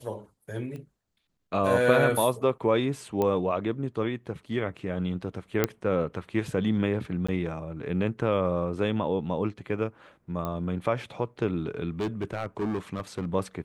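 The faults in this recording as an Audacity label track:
0.760000	0.760000	pop -29 dBFS
3.220000	3.220000	pop -15 dBFS
5.640000	5.640000	pop -8 dBFS
7.270000	7.290000	dropout 15 ms
10.450000	10.450000	pop -19 dBFS
11.910000	13.350000	clipped -25 dBFS

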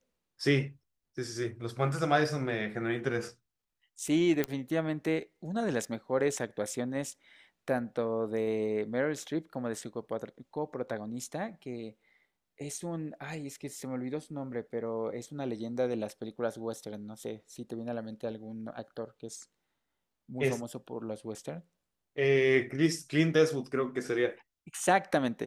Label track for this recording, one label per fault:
4.440000	4.440000	pop -14 dBFS

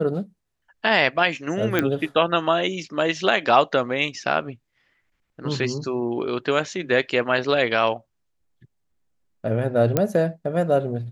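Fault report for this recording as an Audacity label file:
1.790000	1.790000	pop -7 dBFS
9.970000	9.970000	pop -6 dBFS

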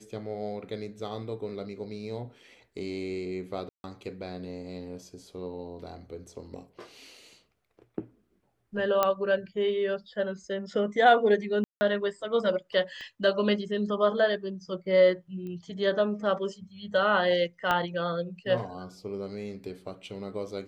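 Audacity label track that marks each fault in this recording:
3.690000	3.840000	dropout 151 ms
9.030000	9.030000	pop -10 dBFS
11.640000	11.810000	dropout 170 ms
13.010000	13.010000	pop -30 dBFS
15.470000	15.470000	pop -30 dBFS
17.710000	17.710000	pop -13 dBFS

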